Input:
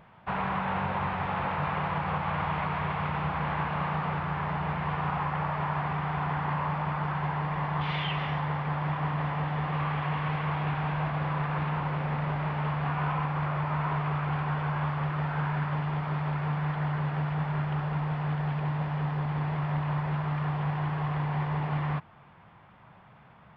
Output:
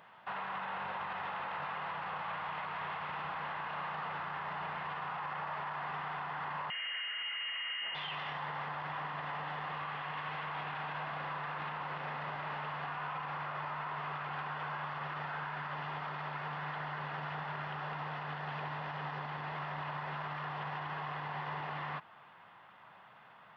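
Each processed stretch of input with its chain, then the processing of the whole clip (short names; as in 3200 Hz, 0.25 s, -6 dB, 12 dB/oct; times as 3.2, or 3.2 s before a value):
6.7–7.95 inverted band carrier 3000 Hz + fast leveller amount 100%
whole clip: HPF 1100 Hz 6 dB/oct; notch 2300 Hz, Q 12; limiter -34.5 dBFS; gain +3 dB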